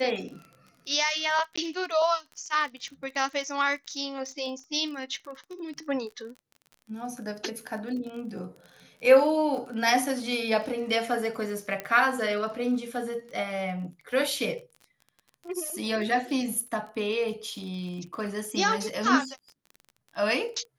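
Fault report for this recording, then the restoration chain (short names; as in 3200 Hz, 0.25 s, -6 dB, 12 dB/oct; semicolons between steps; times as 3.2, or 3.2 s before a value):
crackle 26/s -37 dBFS
1.56–1.57 gap 15 ms
11.8 pop -17 dBFS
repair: de-click; interpolate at 1.56, 15 ms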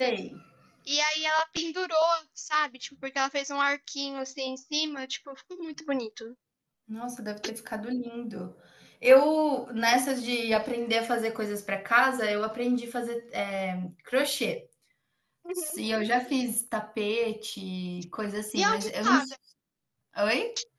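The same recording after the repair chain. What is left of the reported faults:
none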